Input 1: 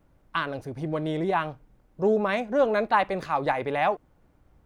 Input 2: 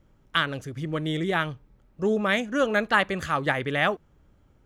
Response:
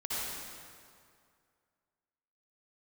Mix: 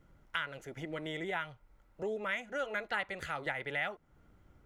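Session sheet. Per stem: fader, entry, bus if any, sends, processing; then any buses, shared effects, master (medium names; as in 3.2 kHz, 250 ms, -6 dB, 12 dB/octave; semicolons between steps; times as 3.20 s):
-6.0 dB, 0.00 s, no send, none
-5.0 dB, 0.00 s, polarity flipped, no send, none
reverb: none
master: small resonant body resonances 1.4/2 kHz, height 8 dB, ringing for 20 ms; compression 2:1, threshold -40 dBFS, peak gain reduction 11.5 dB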